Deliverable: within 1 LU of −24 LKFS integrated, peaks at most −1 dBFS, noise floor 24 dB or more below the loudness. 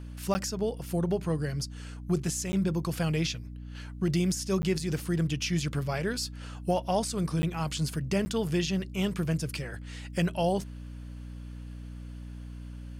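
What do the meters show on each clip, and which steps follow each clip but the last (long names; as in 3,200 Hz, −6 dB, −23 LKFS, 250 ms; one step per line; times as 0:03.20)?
number of dropouts 5; longest dropout 10 ms; mains hum 60 Hz; hum harmonics up to 300 Hz; level of the hum −39 dBFS; integrated loudness −30.5 LKFS; sample peak −16.0 dBFS; target loudness −24.0 LKFS
→ repair the gap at 0:00.34/0:02.52/0:04.62/0:07.42/0:08.25, 10 ms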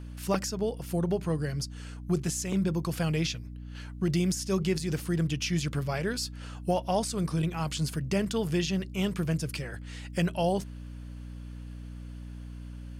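number of dropouts 0; mains hum 60 Hz; hum harmonics up to 300 Hz; level of the hum −39 dBFS
→ hum removal 60 Hz, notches 5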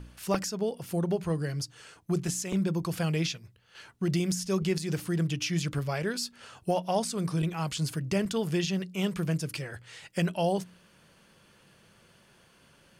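mains hum none found; integrated loudness −30.5 LKFS; sample peak −12.5 dBFS; target loudness −24.0 LKFS
→ level +6.5 dB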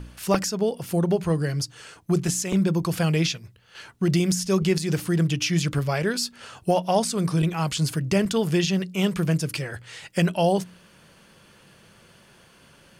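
integrated loudness −24.0 LKFS; sample peak −6.0 dBFS; background noise floor −55 dBFS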